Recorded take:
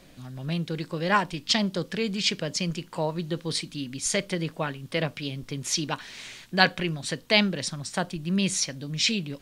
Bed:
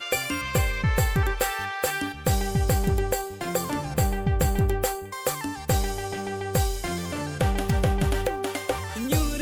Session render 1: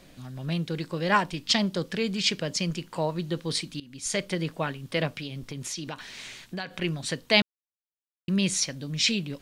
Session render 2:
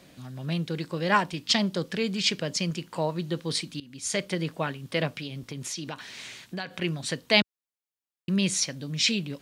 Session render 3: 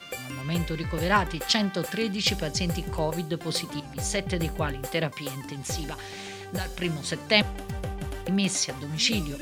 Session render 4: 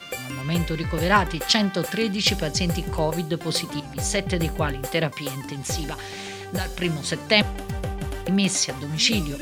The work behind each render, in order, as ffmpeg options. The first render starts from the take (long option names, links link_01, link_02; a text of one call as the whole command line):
ffmpeg -i in.wav -filter_complex "[0:a]asettb=1/sr,asplit=3[link_01][link_02][link_03];[link_01]atrim=end=5.194[link_04];[link_02]atrim=start=5.19:end=6.82,asetpts=PTS-STARTPTS,afade=type=in:duration=0.004:curve=qsin,afade=type=out:start_time=1.626:duration=0.004:curve=qsin,acompressor=threshold=-31dB:ratio=6:attack=3.2:release=140:knee=1:detection=peak[link_05];[link_03]atrim=start=6.816[link_06];[link_04][link_05]acrossfade=duration=0.004:curve1=hsin:curve2=qsin[link_07];[link_07][link_06]acrossfade=duration=0.004:curve1=qsin:curve2=hsin,asplit=4[link_08][link_09][link_10][link_11];[link_08]atrim=end=3.8,asetpts=PTS-STARTPTS,afade=type=out:start_time=3.796:duration=0.004:curve=hsin:silence=0.112202[link_12];[link_09]atrim=start=3.8:end=7.42,asetpts=PTS-STARTPTS,afade=type=in:duration=0.67:curve=qsin:silence=0.112202,afade=type=out:start_time=3.616:duration=0.004:curve=hsin[link_13];[link_10]atrim=start=7.42:end=8.28,asetpts=PTS-STARTPTS,volume=0[link_14];[link_11]atrim=start=8.28,asetpts=PTS-STARTPTS,afade=type=in:duration=0.004:curve=hsin[link_15];[link_12][link_13][link_14][link_15]concat=n=4:v=0:a=1" out.wav
ffmpeg -i in.wav -af "highpass=76" out.wav
ffmpeg -i in.wav -i bed.wav -filter_complex "[1:a]volume=-10.5dB[link_01];[0:a][link_01]amix=inputs=2:normalize=0" out.wav
ffmpeg -i in.wav -af "volume=4dB,alimiter=limit=-3dB:level=0:latency=1" out.wav